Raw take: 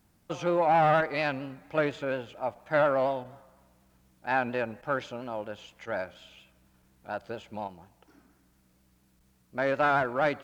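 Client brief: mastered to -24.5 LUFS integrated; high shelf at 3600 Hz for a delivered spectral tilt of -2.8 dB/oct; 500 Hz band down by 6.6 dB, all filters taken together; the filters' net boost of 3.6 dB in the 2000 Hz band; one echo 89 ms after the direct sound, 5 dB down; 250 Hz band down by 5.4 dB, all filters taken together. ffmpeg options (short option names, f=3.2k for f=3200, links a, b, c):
-af "equalizer=f=250:t=o:g=-4.5,equalizer=f=500:t=o:g=-8,equalizer=f=2k:t=o:g=7,highshelf=f=3.6k:g=-5,aecho=1:1:89:0.562,volume=4.5dB"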